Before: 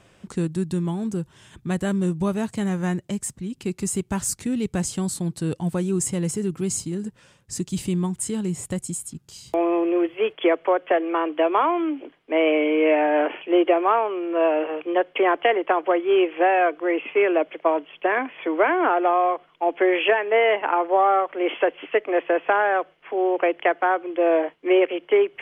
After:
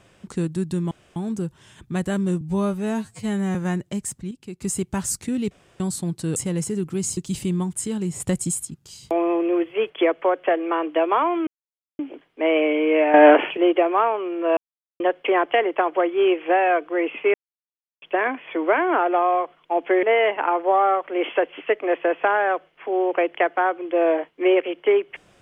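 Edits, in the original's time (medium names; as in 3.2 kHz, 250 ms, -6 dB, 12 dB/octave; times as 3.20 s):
0.91 s: insert room tone 0.25 s
2.16–2.73 s: stretch 2×
3.49–3.80 s: gain -8.5 dB
4.69–4.98 s: room tone
5.54–6.03 s: delete
6.84–7.60 s: delete
8.63–9.08 s: gain +5 dB
11.90 s: insert silence 0.52 s
13.05–13.48 s: gain +9.5 dB
14.48–14.91 s: mute
17.25–17.93 s: mute
19.94–20.28 s: delete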